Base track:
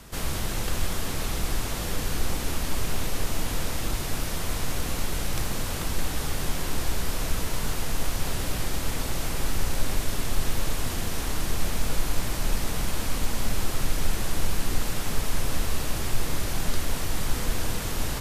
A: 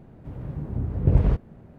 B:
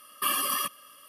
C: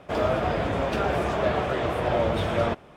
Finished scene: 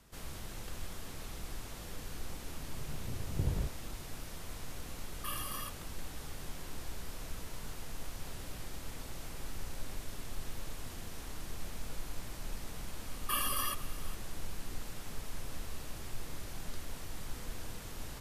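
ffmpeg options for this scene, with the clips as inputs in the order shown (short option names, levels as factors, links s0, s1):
-filter_complex "[2:a]asplit=2[s0][s1];[0:a]volume=0.168[s2];[s1]aecho=1:1:479:0.112[s3];[1:a]atrim=end=1.78,asetpts=PTS-STARTPTS,volume=0.178,afade=t=in:d=0.004:c=hsin,afade=t=out:st=1.776:d=0.004:c=hsin,adelay=2320[s4];[s0]atrim=end=1.08,asetpts=PTS-STARTPTS,volume=0.2,afade=t=in:d=0.004:c=hsin,afade=t=out:st=1.076:d=0.004:c=hsin,adelay=5020[s5];[s3]atrim=end=1.08,asetpts=PTS-STARTPTS,volume=0.447,afade=t=in:d=0.004:c=hsin,afade=t=out:st=1.076:d=0.004:c=hsin,adelay=13070[s6];[s2][s4][s5][s6]amix=inputs=4:normalize=0"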